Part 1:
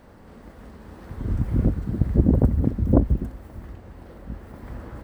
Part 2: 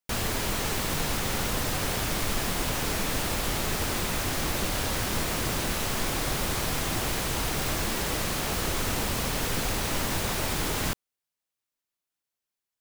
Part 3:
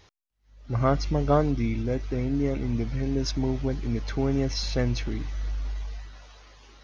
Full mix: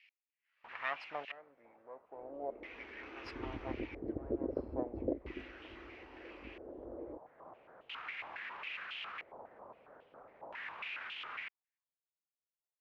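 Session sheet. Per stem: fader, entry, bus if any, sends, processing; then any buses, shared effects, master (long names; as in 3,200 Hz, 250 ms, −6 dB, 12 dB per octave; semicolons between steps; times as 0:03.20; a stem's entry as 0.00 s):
−10.5 dB, 2.15 s, no send, low shelf with overshoot 240 Hz −11 dB, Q 3; downward compressor 5 to 1, threshold −27 dBFS, peak gain reduction 15.5 dB; parametric band 5,900 Hz +14 dB 0.26 octaves
−1.5 dB, 0.55 s, no send, brickwall limiter −25.5 dBFS, peak gain reduction 10 dB; band-pass on a step sequencer 7.3 Hz 900–3,000 Hz; automatic ducking −14 dB, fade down 1.50 s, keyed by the third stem
−12.5 dB, 0.00 s, no send, lower of the sound and its delayed copy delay 0.4 ms; auto-filter high-pass saw down 0.8 Hz 670–2,400 Hz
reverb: not used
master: auto-filter low-pass square 0.38 Hz 580–2,600 Hz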